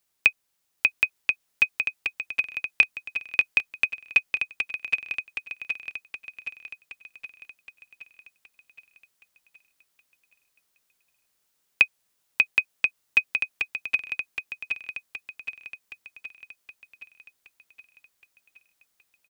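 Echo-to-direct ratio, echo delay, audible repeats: -2.0 dB, 770 ms, 7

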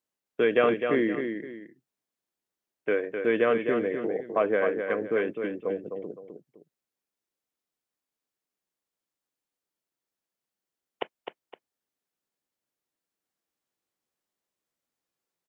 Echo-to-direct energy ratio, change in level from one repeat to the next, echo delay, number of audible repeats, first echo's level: -6.0 dB, -9.5 dB, 257 ms, 2, -6.5 dB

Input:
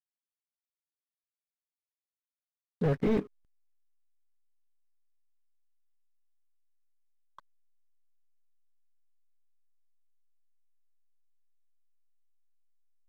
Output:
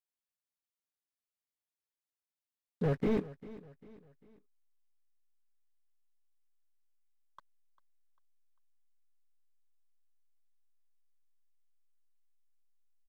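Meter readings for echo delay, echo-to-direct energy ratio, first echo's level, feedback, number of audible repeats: 397 ms, -17.0 dB, -18.0 dB, 42%, 3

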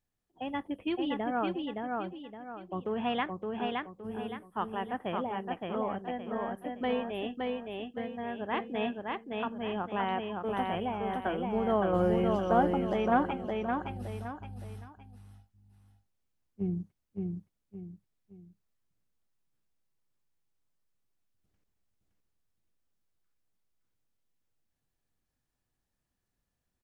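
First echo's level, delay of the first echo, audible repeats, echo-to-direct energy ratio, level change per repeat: -3.0 dB, 567 ms, 3, -2.5 dB, -9.0 dB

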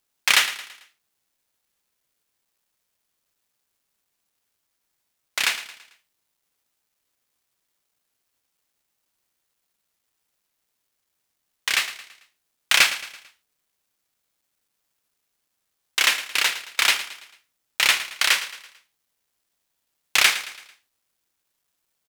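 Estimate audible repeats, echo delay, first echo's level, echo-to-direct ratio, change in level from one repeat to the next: 3, 111 ms, -14.0 dB, -13.0 dB, -7.0 dB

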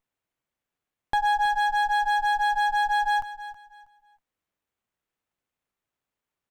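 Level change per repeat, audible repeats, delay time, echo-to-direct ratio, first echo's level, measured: -12.0 dB, 2, 321 ms, -13.5 dB, -14.0 dB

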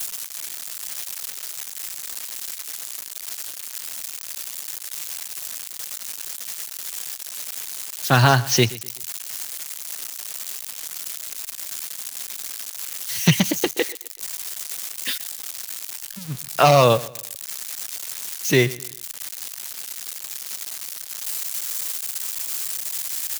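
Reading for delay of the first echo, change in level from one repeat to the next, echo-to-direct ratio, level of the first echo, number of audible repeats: 126 ms, -9.0 dB, -19.5 dB, -20.0 dB, 2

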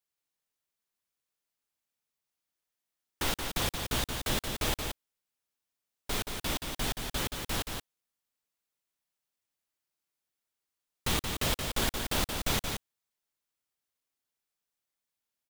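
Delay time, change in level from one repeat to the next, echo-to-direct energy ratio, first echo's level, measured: 176 ms, no regular repeats, -5.5 dB, -5.5 dB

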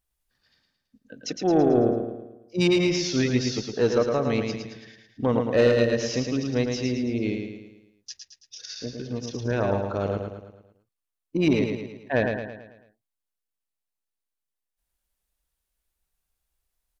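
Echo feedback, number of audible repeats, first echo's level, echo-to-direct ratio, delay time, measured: 48%, 5, -5.0 dB, -4.0 dB, 110 ms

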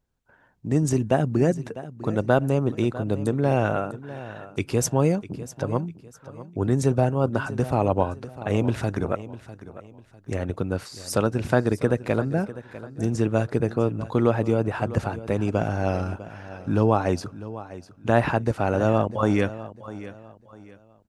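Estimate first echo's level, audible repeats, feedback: -15.5 dB, 2, 32%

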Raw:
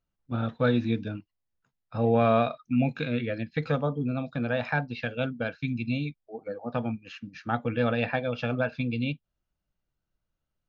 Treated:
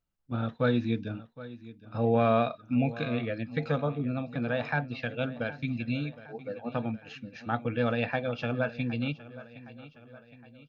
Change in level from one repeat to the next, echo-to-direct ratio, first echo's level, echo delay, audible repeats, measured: -5.5 dB, -15.5 dB, -17.0 dB, 765 ms, 3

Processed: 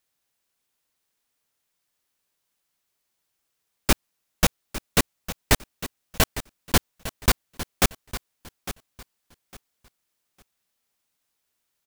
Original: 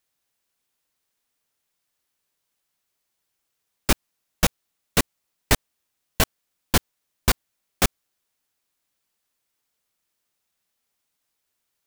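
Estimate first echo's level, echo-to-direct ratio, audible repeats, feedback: -13.5 dB, -13.5 dB, 2, 24%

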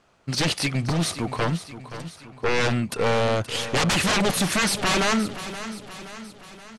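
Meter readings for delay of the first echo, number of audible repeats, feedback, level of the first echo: 524 ms, 5, 54%, -13.0 dB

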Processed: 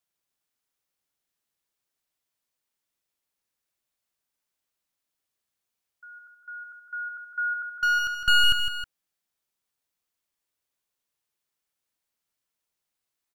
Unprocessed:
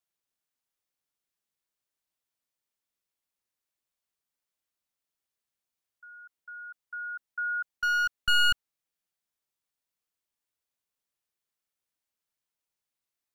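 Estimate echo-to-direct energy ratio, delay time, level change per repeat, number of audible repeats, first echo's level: -6.5 dB, 158 ms, -6.0 dB, 2, -7.5 dB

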